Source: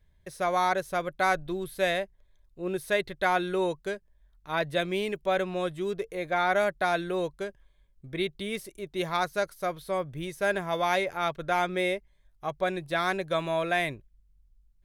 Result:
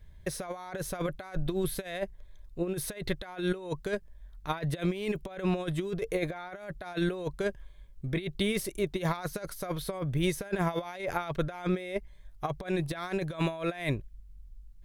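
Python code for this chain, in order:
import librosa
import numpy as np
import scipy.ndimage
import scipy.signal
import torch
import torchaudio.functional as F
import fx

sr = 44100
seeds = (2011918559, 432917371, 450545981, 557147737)

y = fx.low_shelf(x, sr, hz=140.0, db=5.5)
y = fx.over_compress(y, sr, threshold_db=-33.0, ratio=-0.5)
y = y * librosa.db_to_amplitude(2.0)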